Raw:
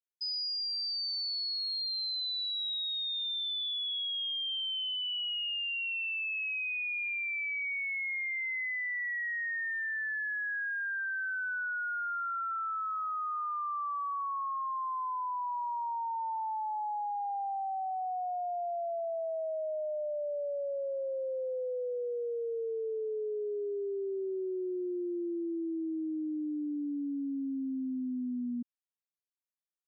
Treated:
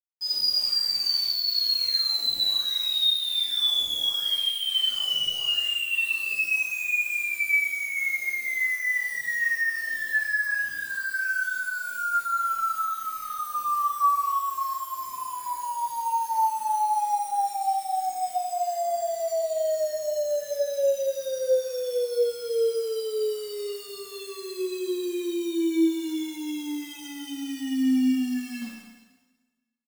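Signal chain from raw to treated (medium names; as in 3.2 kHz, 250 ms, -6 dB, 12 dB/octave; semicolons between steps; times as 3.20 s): reverb removal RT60 1.1 s; bit crusher 8-bit; Schroeder reverb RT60 1.3 s, combs from 27 ms, DRR -7 dB; endless flanger 10.1 ms -0.77 Hz; trim +6 dB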